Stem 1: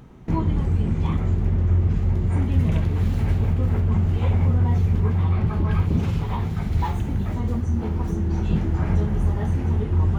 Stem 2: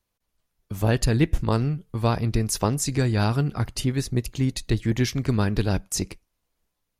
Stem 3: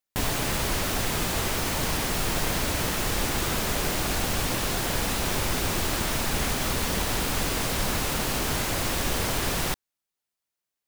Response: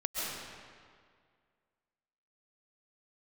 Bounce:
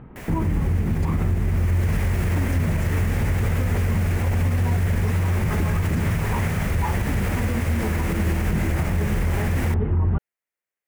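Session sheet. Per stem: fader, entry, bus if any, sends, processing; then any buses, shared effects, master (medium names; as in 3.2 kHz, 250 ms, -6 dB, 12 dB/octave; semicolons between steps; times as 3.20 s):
+3.0 dB, 0.00 s, no send, low-pass 2.4 kHz 24 dB/octave
-19.5 dB, 0.00 s, no send, none
1.37 s -15.5 dB -> 1.94 s -6.5 dB, 0.00 s, no send, graphic EQ 500/2000/4000 Hz +8/+12/-8 dB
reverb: none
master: peak limiter -14 dBFS, peak gain reduction 9 dB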